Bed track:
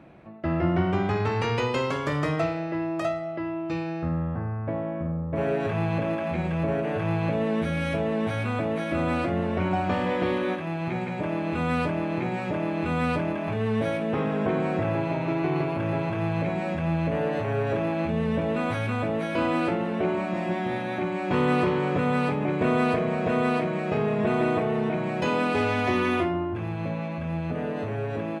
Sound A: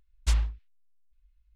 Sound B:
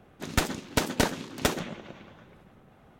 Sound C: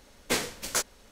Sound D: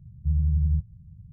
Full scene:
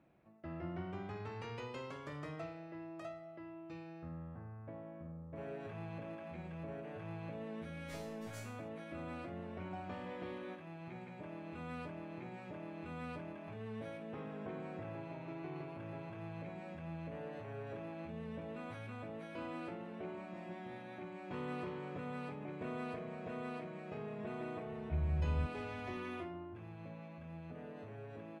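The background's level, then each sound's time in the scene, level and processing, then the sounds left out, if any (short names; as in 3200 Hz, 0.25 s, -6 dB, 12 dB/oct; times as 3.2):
bed track -19.5 dB
7.58 add C -7.5 dB + resonator bank G#3 fifth, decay 0.6 s
24.66 add D -12 dB
not used: A, B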